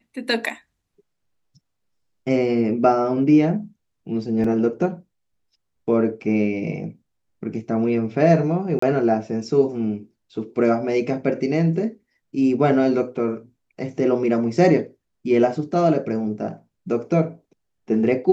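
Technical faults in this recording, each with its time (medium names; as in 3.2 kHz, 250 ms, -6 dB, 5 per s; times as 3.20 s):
4.44 s: dropout 3.9 ms
8.79–8.82 s: dropout 34 ms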